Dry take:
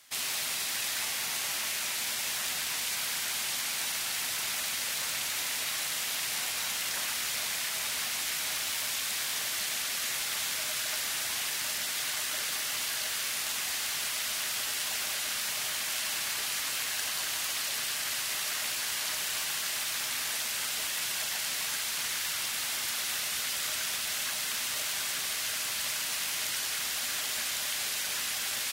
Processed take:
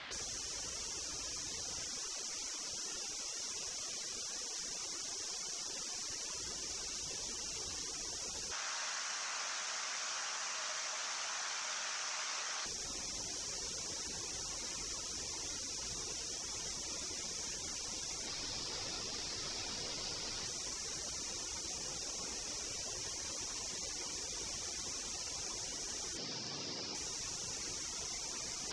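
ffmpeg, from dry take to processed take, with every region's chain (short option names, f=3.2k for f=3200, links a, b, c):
-filter_complex "[0:a]asettb=1/sr,asplit=3[a][b][c];[a]atrim=end=1.894[d];[b]atrim=start=1.89:end=6.35,asetpts=PTS-STARTPTS,afade=t=in:d=0.004:c=qsin,afade=t=out:st=4.456:d=0.004:c=qsin,lowshelf=f=190:g=12,bandreject=f=210:w=5.9[e];[c]atrim=start=6.346[f];[d][e]acrossfade=d=0.004:c1=hsin:c2=qsin[g];[g][f]acrossfade=d=0.004:c1=qsin:c2=hsin,asettb=1/sr,asplit=3[h][i][j];[h]atrim=end=8.514[k];[i]atrim=start=8.51:end=12.66,asetpts=PTS-STARTPTS,afade=t=in:d=0.004:c=qsin,afade=t=out:st=4.146:d=0.004:c=qsin,bandpass=f=5.9k:t=q:w=1.3,aecho=1:1:150:0.335,atrim=end_sample=183015[l];[j]atrim=start=12.656[m];[k][l]acrossfade=d=0.004:c1=hsin:c2=qsin[n];[n][m]acrossfade=d=0.004:c1=qsin:c2=hsin,asettb=1/sr,asplit=3[o][p][q];[o]atrim=end=18.264[r];[p]atrim=start=18.26:end=20.46,asetpts=PTS-STARTPTS,afade=t=in:d=0.004:c=qsin,afade=t=out:st=2.196:d=0.004:c=qsin,acrusher=bits=2:mode=log:mix=0:aa=0.000001,flanger=delay=6.5:depth=7:regen=-37:speed=1.5:shape=triangular[s];[q]atrim=start=20.456[t];[r][s]acrossfade=d=0.004:c1=hsin:c2=qsin[u];[u][t]acrossfade=d=0.004:c1=qsin:c2=hsin,asettb=1/sr,asplit=3[v][w][x];[v]atrim=end=26.174[y];[w]atrim=start=26.17:end=26.95,asetpts=PTS-STARTPTS,afade=t=in:d=0.004:c=qsin,afade=t=out:st=0.776:d=0.004:c=qsin,highpass=130,lowpass=4.5k,lowshelf=f=470:g=-8.5[z];[x]atrim=start=26.946[aa];[y][z]acrossfade=d=0.004:c1=hsin:c2=qsin[ab];[ab][aa]acrossfade=d=0.004:c1=qsin:c2=hsin,lowpass=f=4.5k:w=0.5412,lowpass=f=4.5k:w=1.3066,highshelf=f=2.7k:g=-9,afftfilt=real='re*lt(hypot(re,im),0.00447)':imag='im*lt(hypot(re,im),0.00447)':win_size=1024:overlap=0.75,volume=18dB"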